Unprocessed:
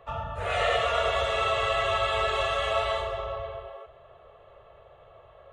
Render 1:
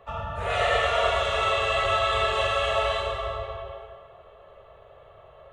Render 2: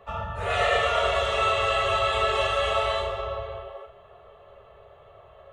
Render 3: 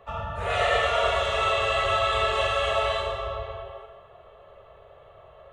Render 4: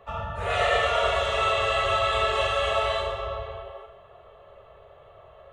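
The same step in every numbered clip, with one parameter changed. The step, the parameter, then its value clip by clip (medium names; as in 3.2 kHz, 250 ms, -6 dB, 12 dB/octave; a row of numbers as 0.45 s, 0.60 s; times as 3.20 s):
gated-style reverb, gate: 480 ms, 90 ms, 290 ms, 190 ms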